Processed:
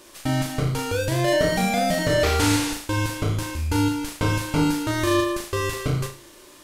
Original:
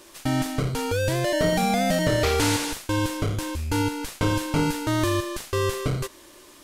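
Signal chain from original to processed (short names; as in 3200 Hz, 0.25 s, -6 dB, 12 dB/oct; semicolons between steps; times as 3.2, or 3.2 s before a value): flutter echo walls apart 6.4 m, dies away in 0.37 s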